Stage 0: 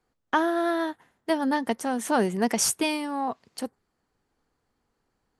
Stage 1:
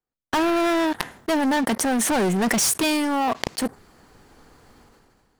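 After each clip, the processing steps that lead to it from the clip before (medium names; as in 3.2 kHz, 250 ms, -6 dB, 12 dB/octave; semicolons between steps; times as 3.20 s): waveshaping leveller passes 5; decay stretcher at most 26 dB/s; trim -6.5 dB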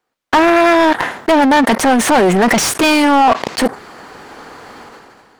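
overdrive pedal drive 29 dB, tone 2.2 kHz, clips at -1 dBFS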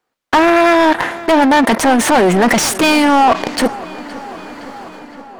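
filtered feedback delay 516 ms, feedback 71%, low-pass 4.8 kHz, level -18 dB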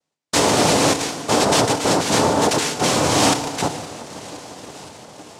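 noise-vocoded speech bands 2; FDN reverb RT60 1.6 s, low-frequency decay 1×, high-frequency decay 0.75×, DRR 8.5 dB; trim -7 dB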